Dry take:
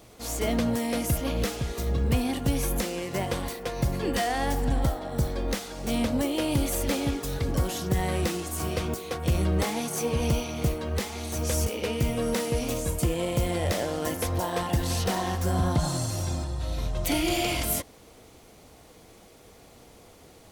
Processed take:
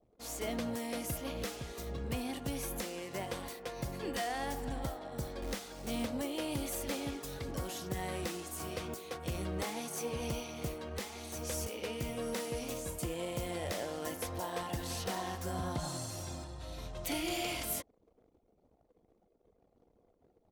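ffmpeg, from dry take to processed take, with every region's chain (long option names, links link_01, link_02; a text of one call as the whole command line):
ffmpeg -i in.wav -filter_complex "[0:a]asettb=1/sr,asplit=3[link_01][link_02][link_03];[link_01]atrim=end=5.424[link_04];[link_02]atrim=start=5.42:end=6.06,asetpts=PTS-STARTPTS,afade=type=in:duration=0.004:curve=qsin,afade=type=out:start_time=0.636:duration=0.004:curve=qsin,lowshelf=frequency=160:gain=5,acrusher=bits=5:mode=log:mix=0:aa=0.000001[link_05];[link_03]atrim=start=6.056[link_06];[link_04][link_05]acrossfade=duration=0.004:curve1=hsin:curve2=qsin[link_07];[link_07][link_06]acrossfade=duration=0.004:curve1=qsin:curve2=hsin,anlmdn=0.0158,lowshelf=frequency=180:gain=-8,volume=-8.5dB" out.wav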